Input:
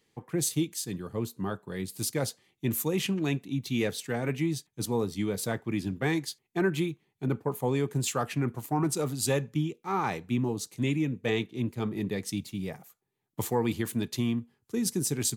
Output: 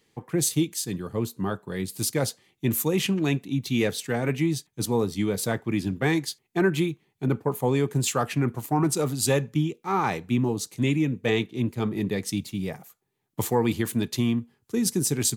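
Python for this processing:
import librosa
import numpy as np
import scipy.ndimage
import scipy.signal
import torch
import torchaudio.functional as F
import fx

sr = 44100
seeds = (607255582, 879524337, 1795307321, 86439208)

y = x * 10.0 ** (4.5 / 20.0)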